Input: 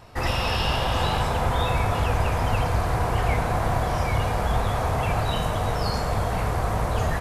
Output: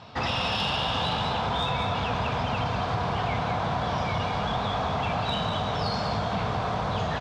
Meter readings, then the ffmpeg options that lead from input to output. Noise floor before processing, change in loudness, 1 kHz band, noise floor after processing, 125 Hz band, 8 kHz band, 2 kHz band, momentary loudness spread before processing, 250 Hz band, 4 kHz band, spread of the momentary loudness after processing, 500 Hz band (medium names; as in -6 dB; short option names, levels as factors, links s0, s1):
-26 dBFS, -3.0 dB, -1.5 dB, -29 dBFS, -6.0 dB, -9.5 dB, -2.0 dB, 2 LU, -1.0 dB, +2.0 dB, 2 LU, -3.5 dB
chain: -filter_complex "[0:a]highpass=120,equalizer=f=200:t=q:w=4:g=4,equalizer=f=350:t=q:w=4:g=-7,equalizer=f=520:t=q:w=4:g=-4,equalizer=f=1900:t=q:w=4:g=-5,equalizer=f=3500:t=q:w=4:g=7,lowpass=f=5400:w=0.5412,lowpass=f=5400:w=1.3066,asoftclip=type=tanh:threshold=0.15,asplit=2[s0][s1];[s1]aecho=0:1:195:0.473[s2];[s0][s2]amix=inputs=2:normalize=0,acompressor=threshold=0.0355:ratio=3,volume=1.5"